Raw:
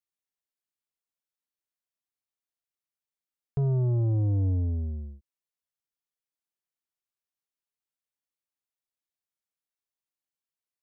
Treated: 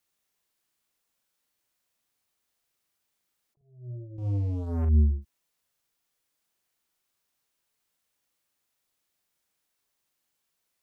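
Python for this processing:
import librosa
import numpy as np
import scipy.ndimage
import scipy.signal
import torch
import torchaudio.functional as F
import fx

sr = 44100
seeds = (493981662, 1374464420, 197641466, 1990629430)

y = fx.spec_gate(x, sr, threshold_db=-30, keep='strong')
y = fx.over_compress(y, sr, threshold_db=-33.0, ratio=-0.5)
y = fx.leveller(y, sr, passes=3, at=(4.18, 4.85))
y = fx.doubler(y, sr, ms=40.0, db=-6.0)
y = fx.attack_slew(y, sr, db_per_s=120.0)
y = y * 10.0 ** (4.5 / 20.0)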